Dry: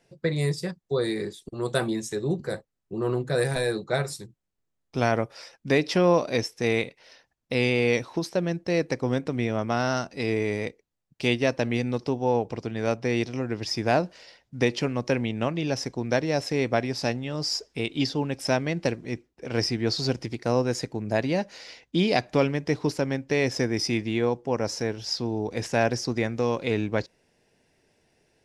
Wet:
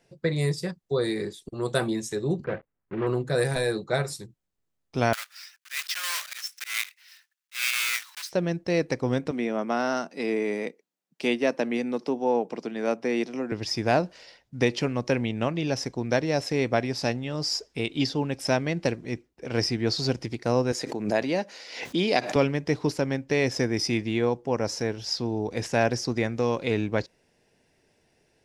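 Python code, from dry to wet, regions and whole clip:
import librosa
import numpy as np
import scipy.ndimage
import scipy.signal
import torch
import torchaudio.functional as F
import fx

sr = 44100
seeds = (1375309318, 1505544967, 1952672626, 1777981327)

y = fx.chain(x, sr, fx.block_float(bits=3),
    fx.lowpass(hz=2200.0, slope=24), at=(2.44, 3.07))
y = fx.chain(y, sr, fx.block_float(bits=3),
    fx.highpass(hz=1400.0, slope=24),
    fx.auto_swell(attack_ms=134.0), at=(5.13, 8.33))
y = fx.chain(y, sr, fx.dynamic_eq(hz=4300.0, q=0.84, threshold_db=-46.0, ratio=4.0, max_db=-5),
    fx.steep_highpass(hz=180.0, slope=36), at=(9.31, 13.52))
y = fx.chain(y, sr, fx.highpass(hz=230.0, slope=12),
    fx.pre_swell(db_per_s=72.0), at=(20.72, 22.36))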